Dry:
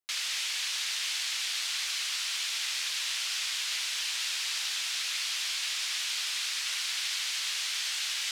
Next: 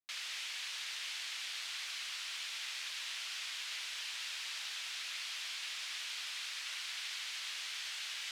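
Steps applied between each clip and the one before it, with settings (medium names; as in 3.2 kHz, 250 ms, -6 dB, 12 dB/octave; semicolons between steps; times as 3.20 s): tone controls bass +5 dB, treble -6 dB; trim -7 dB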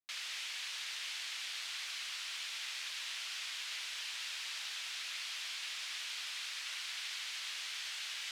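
no audible change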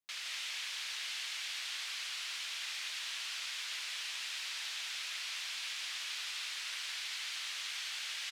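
delay 167 ms -4 dB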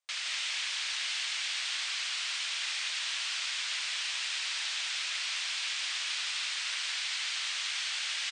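brick-wall FIR band-pass 490–9400 Hz; trim +6.5 dB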